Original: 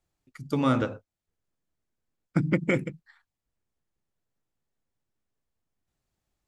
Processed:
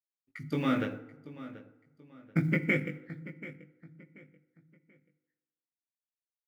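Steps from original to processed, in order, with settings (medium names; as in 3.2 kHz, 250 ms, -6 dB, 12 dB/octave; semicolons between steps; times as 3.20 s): expander -51 dBFS; graphic EQ 1/2/8 kHz -8/+10/-7 dB; in parallel at +0.5 dB: compression 8:1, threshold -33 dBFS, peak gain reduction 16 dB; on the sum: resonant low shelf 110 Hz -7.5 dB, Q 1.5; companded quantiser 8-bit; chorus 0.48 Hz, delay 18 ms, depth 2.3 ms; on a send: feedback delay 734 ms, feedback 33%, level -15.5 dB; on the sum: FDN reverb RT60 1.2 s, low-frequency decay 0.95×, high-frequency decay 0.6×, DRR 12 dB; tape noise reduction on one side only decoder only; trim -4 dB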